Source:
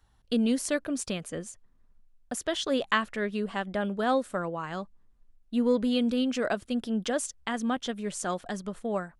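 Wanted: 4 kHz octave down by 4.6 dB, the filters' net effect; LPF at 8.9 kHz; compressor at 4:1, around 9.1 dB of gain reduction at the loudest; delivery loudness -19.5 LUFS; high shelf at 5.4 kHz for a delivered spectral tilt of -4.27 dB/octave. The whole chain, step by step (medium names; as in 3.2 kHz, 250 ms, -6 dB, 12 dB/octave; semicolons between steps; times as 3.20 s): low-pass 8.9 kHz; peaking EQ 4 kHz -8 dB; treble shelf 5.4 kHz +4 dB; compression 4:1, threshold -32 dBFS; trim +17 dB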